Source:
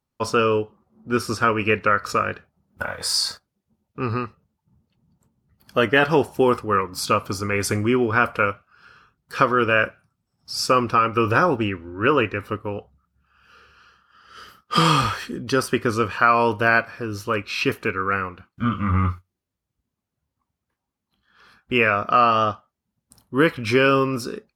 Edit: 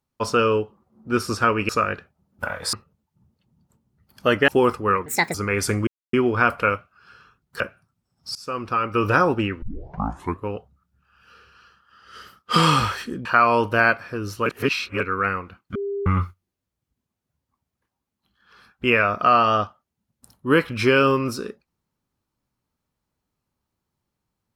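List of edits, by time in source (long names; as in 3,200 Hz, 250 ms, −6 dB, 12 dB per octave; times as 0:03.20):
0:01.69–0:02.07: remove
0:03.11–0:04.24: remove
0:05.99–0:06.32: remove
0:06.90–0:07.36: play speed 163%
0:07.89: splice in silence 0.26 s
0:09.36–0:09.82: remove
0:10.57–0:11.33: fade in, from −22.5 dB
0:11.84: tape start 0.83 s
0:15.47–0:16.13: remove
0:17.34–0:17.88: reverse
0:18.63–0:18.94: beep over 400 Hz −24 dBFS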